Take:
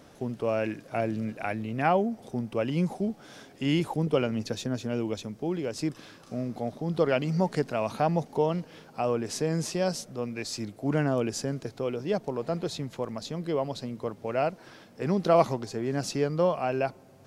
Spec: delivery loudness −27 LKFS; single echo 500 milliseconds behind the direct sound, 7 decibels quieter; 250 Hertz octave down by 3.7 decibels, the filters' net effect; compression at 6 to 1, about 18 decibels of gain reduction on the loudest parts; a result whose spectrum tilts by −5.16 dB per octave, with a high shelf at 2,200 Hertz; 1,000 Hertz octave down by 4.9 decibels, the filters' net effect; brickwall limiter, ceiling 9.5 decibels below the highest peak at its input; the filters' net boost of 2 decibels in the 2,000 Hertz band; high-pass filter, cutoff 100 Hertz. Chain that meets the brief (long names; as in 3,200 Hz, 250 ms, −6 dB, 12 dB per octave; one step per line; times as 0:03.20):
high-pass filter 100 Hz
parametric band 250 Hz −4.5 dB
parametric band 1,000 Hz −8 dB
parametric band 2,000 Hz +8 dB
high-shelf EQ 2,200 Hz −4.5 dB
downward compressor 6 to 1, threshold −40 dBFS
brickwall limiter −34 dBFS
single-tap delay 500 ms −7 dB
level +17.5 dB